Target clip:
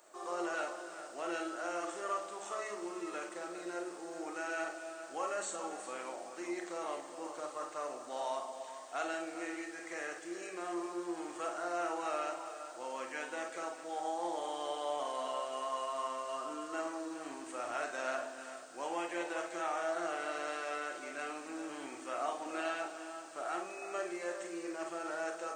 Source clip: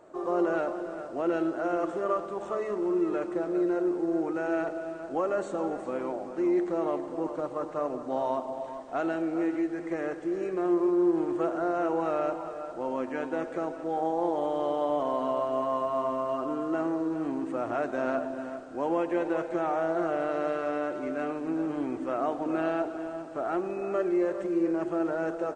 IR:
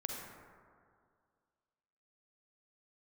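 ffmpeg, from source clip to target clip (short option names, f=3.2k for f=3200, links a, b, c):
-filter_complex "[0:a]aderivative[a];[1:a]atrim=start_sample=2205,atrim=end_sample=3969,asetrate=61740,aresample=44100[b];[a][b]afir=irnorm=-1:irlink=0,volume=15.5dB"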